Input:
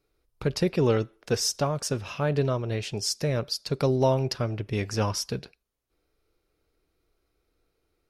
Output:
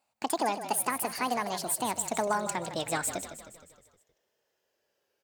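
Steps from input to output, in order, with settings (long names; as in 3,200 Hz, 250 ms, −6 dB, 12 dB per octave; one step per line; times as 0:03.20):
gliding playback speed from 190% → 119%
high-pass filter 210 Hz 12 dB per octave
low-shelf EQ 410 Hz −8 dB
downward compressor, threshold −24 dBFS, peak gain reduction 5.5 dB
echo with shifted repeats 156 ms, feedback 54%, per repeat −36 Hz, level −11 dB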